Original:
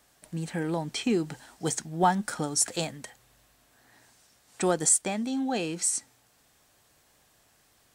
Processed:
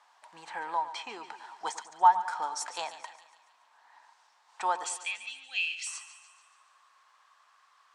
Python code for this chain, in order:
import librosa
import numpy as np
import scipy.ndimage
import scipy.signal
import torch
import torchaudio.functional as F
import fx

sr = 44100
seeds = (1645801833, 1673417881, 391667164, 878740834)

y = scipy.signal.sosfilt(scipy.signal.butter(2, 5000.0, 'lowpass', fs=sr, output='sos'), x)
y = fx.rider(y, sr, range_db=4, speed_s=0.5)
y = fx.highpass_res(y, sr, hz=fx.steps((0.0, 940.0), (4.84, 2700.0), (5.87, 1100.0)), q=7.0)
y = fx.echo_split(y, sr, split_hz=1300.0, low_ms=107, high_ms=143, feedback_pct=52, wet_db=-13.0)
y = y * librosa.db_to_amplitude(-5.5)